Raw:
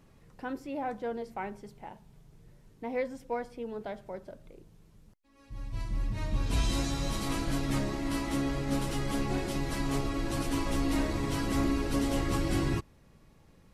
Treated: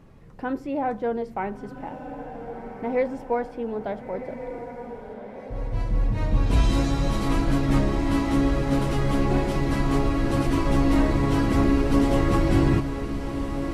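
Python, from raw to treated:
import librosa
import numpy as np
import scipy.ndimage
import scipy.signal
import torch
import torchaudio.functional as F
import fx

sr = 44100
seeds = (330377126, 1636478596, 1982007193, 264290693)

y = fx.high_shelf(x, sr, hz=2900.0, db=-12.0)
y = fx.echo_diffused(y, sr, ms=1401, feedback_pct=53, wet_db=-9.0)
y = y * librosa.db_to_amplitude(9.0)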